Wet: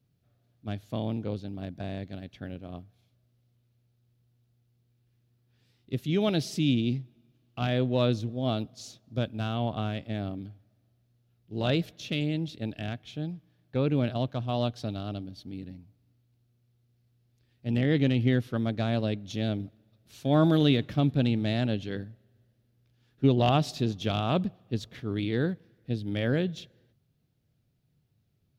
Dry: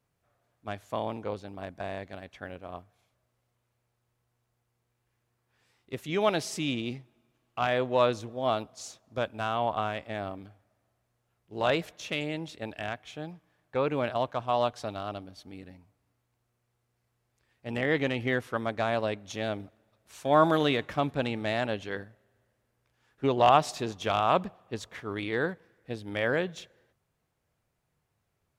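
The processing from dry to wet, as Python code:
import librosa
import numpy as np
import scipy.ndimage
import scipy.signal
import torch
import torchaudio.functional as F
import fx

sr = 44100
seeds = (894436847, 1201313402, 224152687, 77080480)

y = fx.graphic_eq(x, sr, hz=(125, 250, 500, 1000, 2000, 4000, 8000), db=(8, 5, -3, -12, -6, 4, -9))
y = y * 10.0 ** (2.0 / 20.0)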